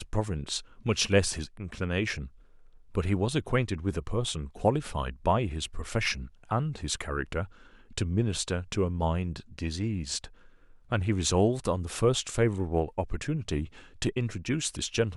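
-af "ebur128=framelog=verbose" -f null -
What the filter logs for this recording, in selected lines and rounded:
Integrated loudness:
  I:         -30.0 LUFS
  Threshold: -40.4 LUFS
Loudness range:
  LRA:         3.0 LU
  Threshold: -50.4 LUFS
  LRA low:   -31.8 LUFS
  LRA high:  -28.8 LUFS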